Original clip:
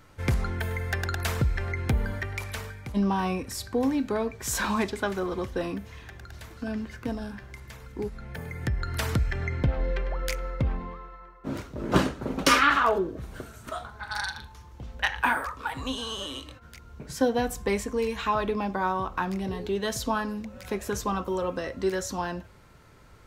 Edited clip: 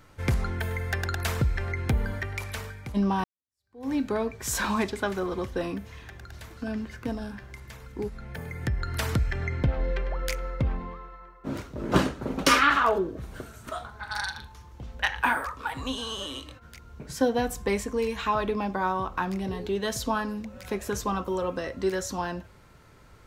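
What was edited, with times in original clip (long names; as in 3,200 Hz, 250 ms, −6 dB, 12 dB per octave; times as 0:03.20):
0:03.24–0:03.92: fade in exponential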